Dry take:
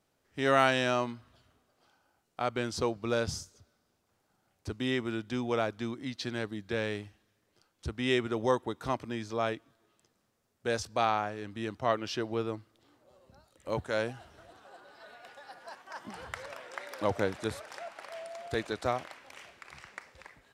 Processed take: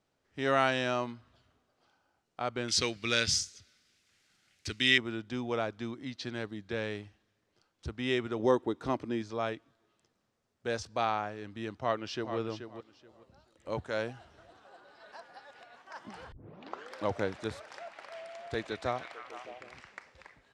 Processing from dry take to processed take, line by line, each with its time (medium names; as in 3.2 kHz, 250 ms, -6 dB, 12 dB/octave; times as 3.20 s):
2.68–4.98 s: FFT filter 300 Hz 0 dB, 920 Hz -6 dB, 2 kHz +15 dB
8.39–9.22 s: peaking EQ 320 Hz +8 dB 1.2 oct
11.80–12.37 s: echo throw 430 ms, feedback 20%, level -9 dB
15.12–15.76 s: reverse
16.32 s: tape start 0.65 s
17.78–19.81 s: repeats whose band climbs or falls 153 ms, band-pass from 2.7 kHz, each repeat -0.7 oct, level -4 dB
whole clip: low-pass 6.9 kHz 12 dB/octave; trim -2.5 dB